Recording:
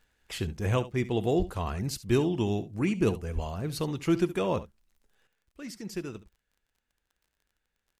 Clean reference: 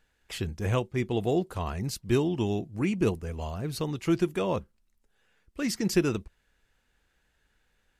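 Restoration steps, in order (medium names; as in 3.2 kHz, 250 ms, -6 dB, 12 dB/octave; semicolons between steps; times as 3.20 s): de-click; 1.38–1.50 s: high-pass 140 Hz 24 dB/octave; 3.34–3.46 s: high-pass 140 Hz 24 dB/octave; inverse comb 70 ms -15.5 dB; 5.27 s: gain correction +11.5 dB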